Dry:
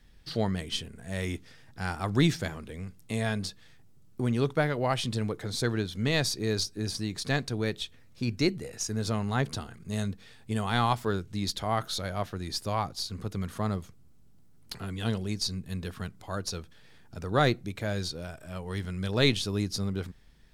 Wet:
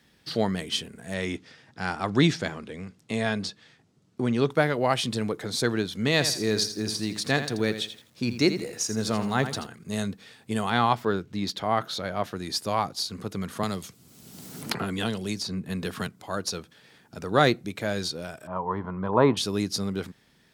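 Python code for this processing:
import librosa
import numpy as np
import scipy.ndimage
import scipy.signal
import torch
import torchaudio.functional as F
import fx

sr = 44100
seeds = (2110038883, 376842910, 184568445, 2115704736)

y = fx.lowpass(x, sr, hz=6600.0, slope=12, at=(1.14, 4.5))
y = fx.echo_crushed(y, sr, ms=83, feedback_pct=35, bits=9, wet_db=-10.5, at=(6.12, 9.66))
y = fx.peak_eq(y, sr, hz=9800.0, db=-10.5, octaves=1.6, at=(10.7, 12.24))
y = fx.band_squash(y, sr, depth_pct=100, at=(13.63, 16.07))
y = fx.lowpass_res(y, sr, hz=1000.0, q=7.9, at=(18.47, 19.37))
y = scipy.signal.sosfilt(scipy.signal.butter(2, 160.0, 'highpass', fs=sr, output='sos'), y)
y = F.gain(torch.from_numpy(y), 4.5).numpy()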